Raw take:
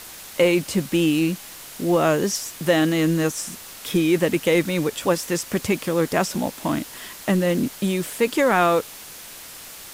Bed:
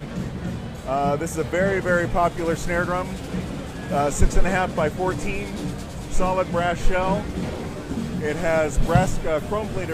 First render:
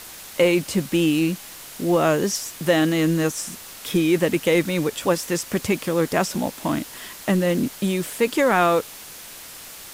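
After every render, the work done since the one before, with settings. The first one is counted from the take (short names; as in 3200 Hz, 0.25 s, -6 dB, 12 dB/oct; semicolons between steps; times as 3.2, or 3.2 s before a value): nothing audible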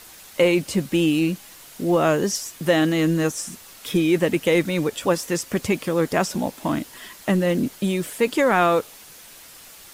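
denoiser 6 dB, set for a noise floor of -40 dBFS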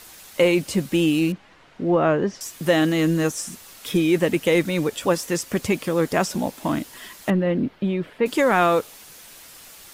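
1.32–2.41 LPF 2200 Hz; 7.3–8.26 air absorption 380 m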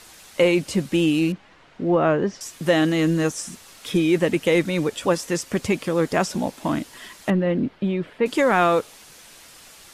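Bessel low-pass 10000 Hz, order 8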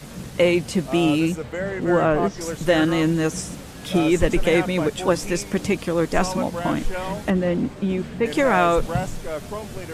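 add bed -6.5 dB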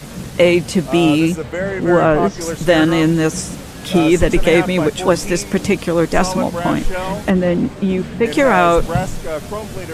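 gain +6 dB; limiter -1 dBFS, peak gain reduction 2 dB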